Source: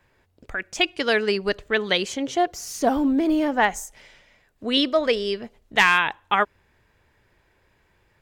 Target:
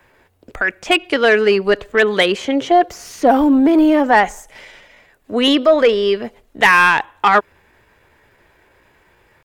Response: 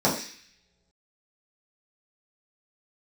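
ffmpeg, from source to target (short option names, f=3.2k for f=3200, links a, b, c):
-filter_complex "[0:a]acrossover=split=4100[a][b];[b]acompressor=threshold=-48dB:ratio=4:attack=1:release=60[c];[a][c]amix=inputs=2:normalize=0,aeval=exprs='0.531*(cos(1*acos(clip(val(0)/0.531,-1,1)))-cos(1*PI/2))+0.0596*(cos(5*acos(clip(val(0)/0.531,-1,1)))-cos(5*PI/2))+0.00299*(cos(6*acos(clip(val(0)/0.531,-1,1)))-cos(6*PI/2))':c=same,acrossover=split=260[d][e];[e]acontrast=75[f];[d][f]amix=inputs=2:normalize=0,atempo=0.87,equalizer=f=5.1k:t=o:w=1.4:g=-4.5,volume=1dB"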